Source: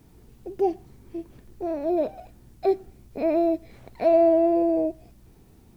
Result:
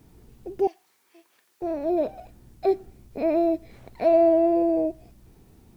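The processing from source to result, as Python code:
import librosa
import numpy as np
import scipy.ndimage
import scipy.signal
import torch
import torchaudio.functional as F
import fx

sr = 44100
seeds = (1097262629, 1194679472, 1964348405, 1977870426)

y = fx.highpass(x, sr, hz=1200.0, slope=12, at=(0.67, 1.62))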